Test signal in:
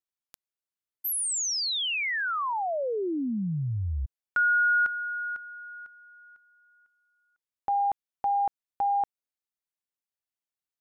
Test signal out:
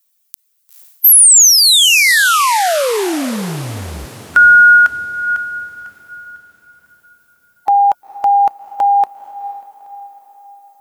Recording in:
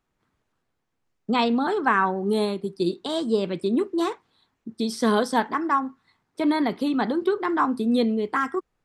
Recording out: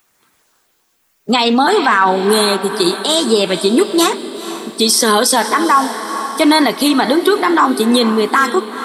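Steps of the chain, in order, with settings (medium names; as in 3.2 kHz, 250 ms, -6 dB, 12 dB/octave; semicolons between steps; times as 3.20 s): coarse spectral quantiser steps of 15 dB; RIAA curve recording; on a send: echo that smears into a reverb 475 ms, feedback 49%, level -14 dB; on the sum: loudness maximiser +17 dB; trim -1 dB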